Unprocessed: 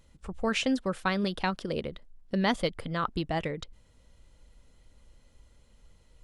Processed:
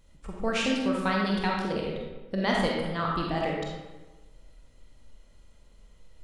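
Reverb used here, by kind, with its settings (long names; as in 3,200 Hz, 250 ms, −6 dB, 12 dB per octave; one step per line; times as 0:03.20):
comb and all-pass reverb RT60 1.2 s, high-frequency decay 0.65×, pre-delay 5 ms, DRR −2.5 dB
level −2 dB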